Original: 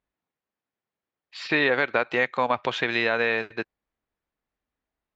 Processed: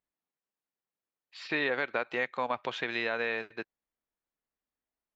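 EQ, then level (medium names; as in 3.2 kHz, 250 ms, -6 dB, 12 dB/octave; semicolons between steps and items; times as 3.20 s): peaking EQ 69 Hz -7 dB 1.6 oct; -8.0 dB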